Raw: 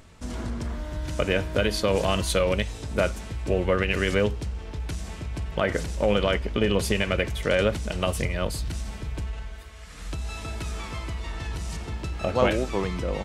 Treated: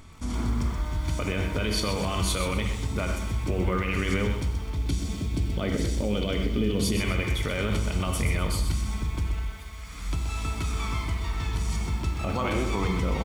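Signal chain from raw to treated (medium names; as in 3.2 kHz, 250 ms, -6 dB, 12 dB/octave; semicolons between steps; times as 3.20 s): 4.76–6.97 s: graphic EQ 250/500/1000/2000/4000 Hz +6/+4/-8/-4/+4 dB; reverberation, pre-delay 3 ms, DRR 7.5 dB; peak limiter -17.5 dBFS, peak gain reduction 10 dB; comb 0.9 ms, depth 46%; bit-crushed delay 127 ms, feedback 35%, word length 8-bit, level -8 dB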